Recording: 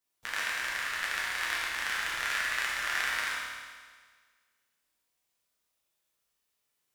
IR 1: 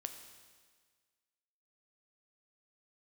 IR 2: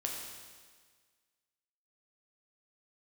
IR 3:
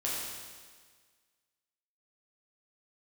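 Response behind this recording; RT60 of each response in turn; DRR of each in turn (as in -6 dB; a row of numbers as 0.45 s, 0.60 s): 3; 1.6 s, 1.6 s, 1.6 s; 6.5 dB, -1.0 dB, -6.5 dB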